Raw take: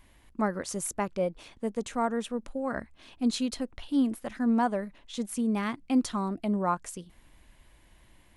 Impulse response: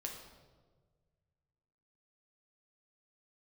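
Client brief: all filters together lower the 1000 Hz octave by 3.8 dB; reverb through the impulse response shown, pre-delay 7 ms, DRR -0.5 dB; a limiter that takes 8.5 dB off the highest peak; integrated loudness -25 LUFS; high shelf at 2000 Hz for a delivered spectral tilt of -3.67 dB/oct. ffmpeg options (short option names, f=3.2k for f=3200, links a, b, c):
-filter_complex "[0:a]equalizer=f=1k:t=o:g=-7,highshelf=f=2k:g=8.5,alimiter=limit=-21dB:level=0:latency=1,asplit=2[a][b];[1:a]atrim=start_sample=2205,adelay=7[c];[b][c]afir=irnorm=-1:irlink=0,volume=2dB[d];[a][d]amix=inputs=2:normalize=0,volume=4.5dB"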